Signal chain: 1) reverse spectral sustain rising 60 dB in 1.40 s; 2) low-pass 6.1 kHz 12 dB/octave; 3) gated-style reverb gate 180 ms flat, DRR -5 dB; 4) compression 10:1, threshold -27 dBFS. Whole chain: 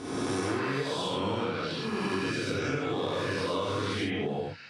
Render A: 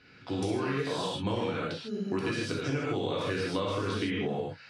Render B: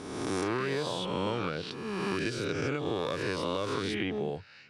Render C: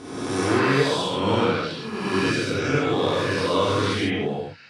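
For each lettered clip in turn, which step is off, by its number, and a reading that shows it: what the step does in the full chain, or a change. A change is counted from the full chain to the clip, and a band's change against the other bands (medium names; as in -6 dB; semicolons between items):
1, 125 Hz band +3.0 dB; 3, momentary loudness spread change +2 LU; 4, mean gain reduction 6.5 dB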